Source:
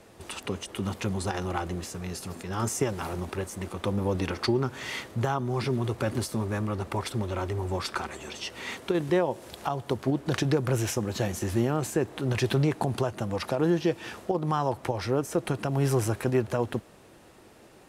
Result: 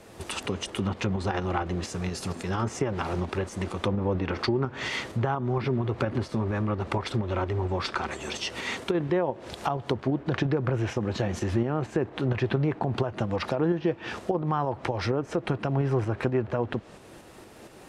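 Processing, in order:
shaped tremolo saw up 4.3 Hz, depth 40%
treble cut that deepens with the level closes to 2,300 Hz, closed at −26 dBFS
downward compressor 2 to 1, threshold −33 dBFS, peak gain reduction 7.5 dB
level +7 dB

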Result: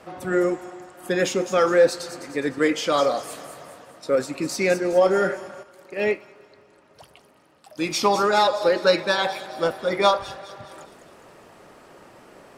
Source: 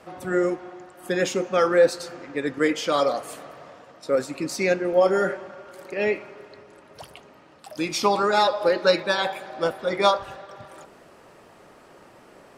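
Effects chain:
in parallel at −12 dB: hard clipping −22 dBFS, distortion −7 dB
on the sum: delay with a high-pass on its return 206 ms, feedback 47%, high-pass 5,500 Hz, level −6.5 dB
0:05.63–0:07.82: expander for the loud parts 1.5 to 1, over −35 dBFS

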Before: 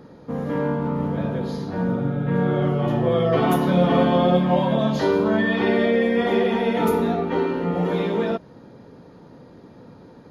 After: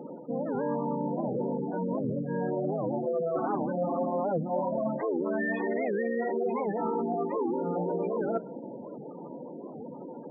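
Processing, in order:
gate on every frequency bin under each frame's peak −20 dB strong
high-pass filter 280 Hz 12 dB per octave
parametric band 4,000 Hz −6.5 dB 0.99 octaves
notch filter 440 Hz, Q 12
on a send at −17 dB: parametric band 410 Hz −11.5 dB 2.5 octaves + convolution reverb RT60 1.6 s, pre-delay 3 ms
on the sum: gate on every frequency bin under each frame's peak −15 dB strong
reversed playback
downward compressor 6 to 1, threshold −36 dBFS, peak gain reduction 18 dB
reversed playback
wow of a warped record 78 rpm, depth 250 cents
level +8 dB

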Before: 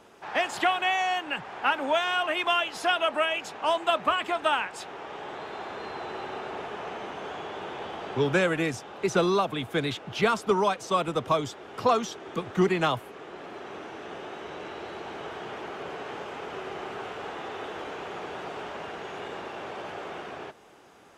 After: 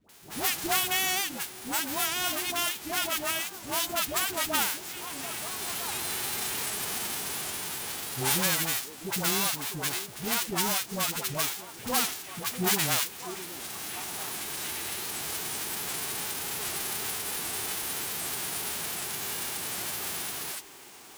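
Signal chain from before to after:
spectral envelope flattened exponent 0.1
in parallel at 0 dB: brickwall limiter −15.5 dBFS, peak gain reduction 10 dB
on the sum: all-pass dispersion highs, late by 93 ms, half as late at 650 Hz
on a send: echo through a band-pass that steps 653 ms, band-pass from 340 Hz, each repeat 1.4 octaves, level −9.5 dB
on the sum: bit-depth reduction 12 bits, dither none
speech leveller within 4 dB 2 s
wow of a warped record 78 rpm, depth 160 cents
level −6.5 dB

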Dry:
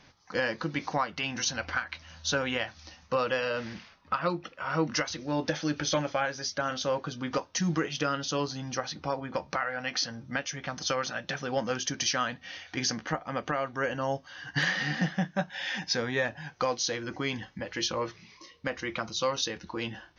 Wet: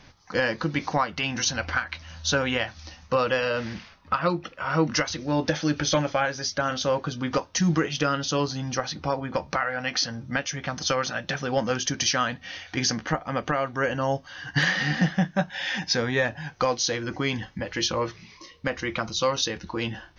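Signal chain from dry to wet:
low-shelf EQ 86 Hz +9.5 dB
level +4.5 dB

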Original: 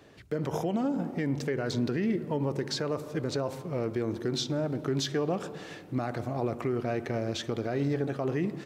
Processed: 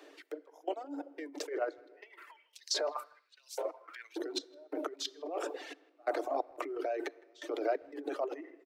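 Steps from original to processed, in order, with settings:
gate pattern "xx..xx.x" 89 BPM −24 dB
rectangular room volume 1,900 cubic metres, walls mixed, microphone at 0.44 metres
compressor whose output falls as the input rises −32 dBFS, ratio −0.5
0:01.91–0:04.16: auto-filter high-pass saw up 1.2 Hz 470–5,900 Hz
Chebyshev high-pass filter 280 Hz, order 10
notch filter 1,700 Hz, Q 26
far-end echo of a speakerphone 160 ms, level −14 dB
reverb reduction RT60 1.7 s
dynamic equaliser 650 Hz, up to +6 dB, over −51 dBFS, Q 1.9
level −1 dB

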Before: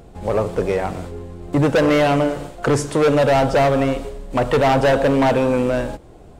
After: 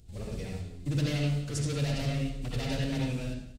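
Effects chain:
flanger 0.46 Hz, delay 2.1 ms, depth 6.5 ms, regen −79%
drawn EQ curve 120 Hz 0 dB, 900 Hz −22 dB, 4,400 Hz +3 dB
single-tap delay 327 ms −14.5 dB
phase-vocoder stretch with locked phases 0.56×
convolution reverb RT60 0.40 s, pre-delay 58 ms, DRR −1.5 dB
level −5 dB

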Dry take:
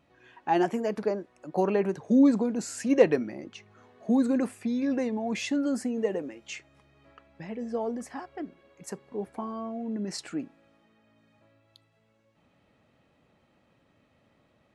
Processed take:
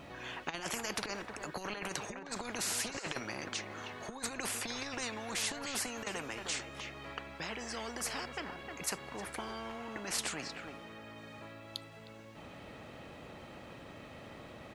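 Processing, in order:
compressor whose output falls as the input rises −28 dBFS, ratio −0.5
far-end echo of a speakerphone 310 ms, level −16 dB
every bin compressed towards the loudest bin 4 to 1

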